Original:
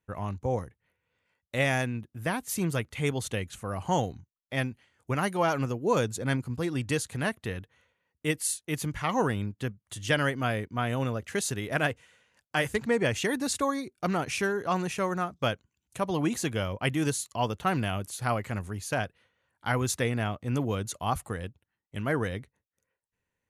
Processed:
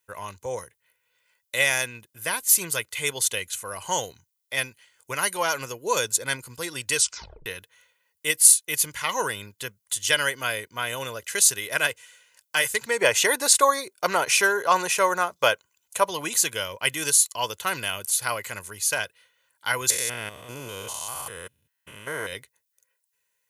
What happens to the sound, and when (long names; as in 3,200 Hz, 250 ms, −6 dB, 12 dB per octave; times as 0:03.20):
0:06.95: tape stop 0.51 s
0:13.01–0:16.09: parametric band 750 Hz +9.5 dB 2.4 octaves
0:19.90–0:22.33: spectrum averaged block by block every 200 ms
whole clip: spectral tilt +4.5 dB per octave; comb filter 2 ms, depth 47%; level +1 dB